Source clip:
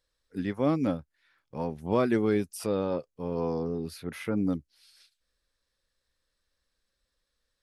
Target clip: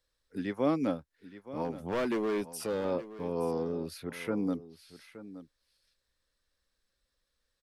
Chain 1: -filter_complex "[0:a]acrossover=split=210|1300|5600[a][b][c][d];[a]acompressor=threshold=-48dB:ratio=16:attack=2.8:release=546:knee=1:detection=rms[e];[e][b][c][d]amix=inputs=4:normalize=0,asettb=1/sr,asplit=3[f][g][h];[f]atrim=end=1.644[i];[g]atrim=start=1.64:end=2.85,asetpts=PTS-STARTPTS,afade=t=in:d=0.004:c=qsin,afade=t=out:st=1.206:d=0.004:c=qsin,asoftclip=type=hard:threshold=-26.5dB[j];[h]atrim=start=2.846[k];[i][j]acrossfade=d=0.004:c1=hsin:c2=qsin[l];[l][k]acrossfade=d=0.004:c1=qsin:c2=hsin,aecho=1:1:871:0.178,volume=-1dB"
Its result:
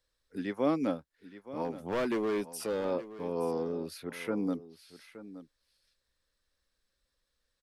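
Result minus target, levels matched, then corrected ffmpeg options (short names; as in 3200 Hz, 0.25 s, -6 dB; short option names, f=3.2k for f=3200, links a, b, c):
compressor: peak gain reduction +7.5 dB
-filter_complex "[0:a]acrossover=split=210|1300|5600[a][b][c][d];[a]acompressor=threshold=-40dB:ratio=16:attack=2.8:release=546:knee=1:detection=rms[e];[e][b][c][d]amix=inputs=4:normalize=0,asettb=1/sr,asplit=3[f][g][h];[f]atrim=end=1.644[i];[g]atrim=start=1.64:end=2.85,asetpts=PTS-STARTPTS,afade=t=in:d=0.004:c=qsin,afade=t=out:st=1.206:d=0.004:c=qsin,asoftclip=type=hard:threshold=-26.5dB[j];[h]atrim=start=2.846[k];[i][j]acrossfade=d=0.004:c1=hsin:c2=qsin[l];[l][k]acrossfade=d=0.004:c1=qsin:c2=hsin,aecho=1:1:871:0.178,volume=-1dB"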